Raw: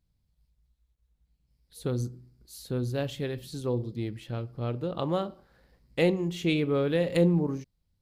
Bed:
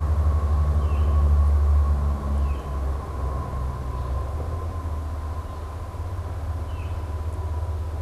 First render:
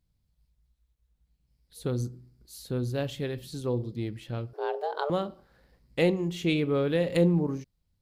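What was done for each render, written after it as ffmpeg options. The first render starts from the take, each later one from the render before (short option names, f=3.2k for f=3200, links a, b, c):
-filter_complex "[0:a]asettb=1/sr,asplit=3[a][b][c];[a]atrim=end=4.534[d];[b]atrim=start=4.53:end=5.1,asetpts=PTS-STARTPTS,afade=t=in:d=0.004:c=qsin,afade=t=out:st=0.566:d=0.004:c=qsin,afreqshift=290[e];[c]atrim=start=5.096[f];[d][e]acrossfade=d=0.004:c1=hsin:c2=qsin[g];[g][f]acrossfade=d=0.004:c1=qsin:c2=hsin"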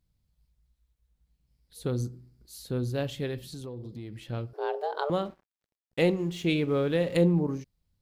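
-filter_complex "[0:a]asettb=1/sr,asplit=3[a][b][c];[a]atrim=end=3.534[d];[b]atrim=start=3.53:end=4.21,asetpts=PTS-STARTPTS,afade=t=in:d=0.004:c=qsin,afade=t=out:st=0.676:d=0.004:c=qsin,acompressor=threshold=-36dB:ratio=5:attack=3.2:release=140:knee=1:detection=peak[e];[c]atrim=start=4.206[f];[d][e]acrossfade=d=0.004:c1=hsin:c2=qsin[g];[g][f]acrossfade=d=0.004:c1=qsin:c2=hsin,asettb=1/sr,asplit=3[h][i][j];[h]atrim=end=5.254[k];[i]atrim=start=5.25:end=7.14,asetpts=PTS-STARTPTS,afade=t=in:d=0.004:c=qsin,afade=t=out:st=1.886:d=0.004:c=qsin,aeval=exprs='sgn(val(0))*max(abs(val(0))-0.002,0)':c=same[l];[j]atrim=start=7.136[m];[k][l]acrossfade=d=0.004:c1=hsin:c2=qsin[n];[n][m]acrossfade=d=0.004:c1=qsin:c2=hsin"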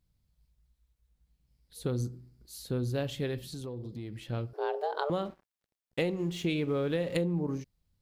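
-af "acompressor=threshold=-26dB:ratio=10"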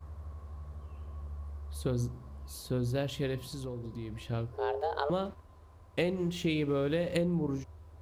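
-filter_complex "[1:a]volume=-23dB[a];[0:a][a]amix=inputs=2:normalize=0"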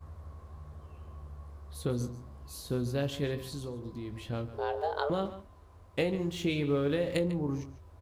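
-filter_complex "[0:a]asplit=2[a][b];[b]adelay=21,volume=-9dB[c];[a][c]amix=inputs=2:normalize=0,asplit=2[d][e];[e]adelay=145.8,volume=-14dB,highshelf=f=4k:g=-3.28[f];[d][f]amix=inputs=2:normalize=0"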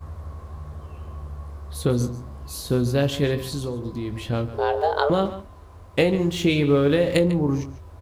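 -af "volume=10.5dB"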